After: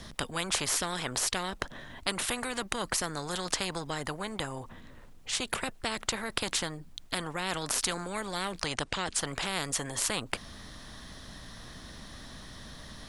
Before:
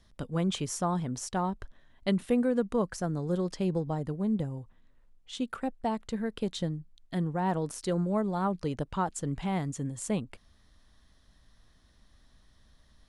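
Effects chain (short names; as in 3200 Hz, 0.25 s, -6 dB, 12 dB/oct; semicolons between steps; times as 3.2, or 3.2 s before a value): 8.65–9.19 Chebyshev low-pass 9200 Hz, order 4; spectral compressor 4:1; gain +8.5 dB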